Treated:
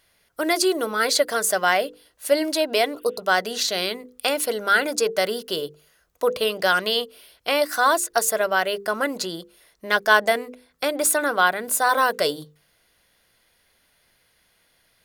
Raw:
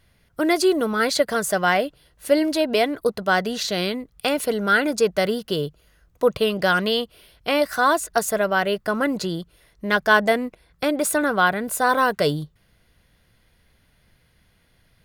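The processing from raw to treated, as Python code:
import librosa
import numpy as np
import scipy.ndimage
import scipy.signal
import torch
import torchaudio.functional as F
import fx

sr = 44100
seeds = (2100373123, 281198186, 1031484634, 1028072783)

y = fx.bass_treble(x, sr, bass_db=-14, treble_db=5)
y = fx.spec_repair(y, sr, seeds[0], start_s=2.95, length_s=0.24, low_hz=1400.0, high_hz=3700.0, source='after')
y = fx.hum_notches(y, sr, base_hz=50, count=10)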